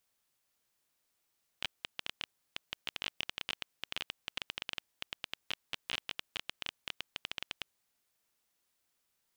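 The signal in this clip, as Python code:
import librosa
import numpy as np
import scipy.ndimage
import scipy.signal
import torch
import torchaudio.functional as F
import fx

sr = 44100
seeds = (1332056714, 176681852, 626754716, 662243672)

y = fx.geiger_clicks(sr, seeds[0], length_s=6.0, per_s=14.0, level_db=-18.0)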